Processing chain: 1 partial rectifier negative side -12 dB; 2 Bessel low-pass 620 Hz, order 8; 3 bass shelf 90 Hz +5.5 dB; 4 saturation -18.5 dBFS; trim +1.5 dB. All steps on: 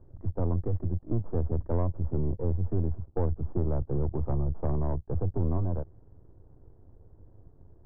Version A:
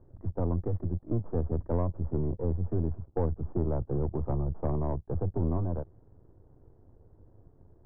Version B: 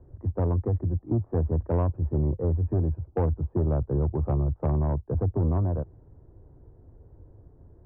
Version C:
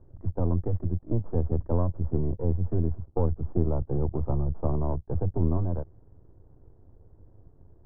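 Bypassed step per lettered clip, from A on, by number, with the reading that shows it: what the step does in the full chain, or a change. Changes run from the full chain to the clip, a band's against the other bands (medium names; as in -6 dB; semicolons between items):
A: 3, 125 Hz band -2.5 dB; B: 1, distortion -4 dB; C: 4, distortion -17 dB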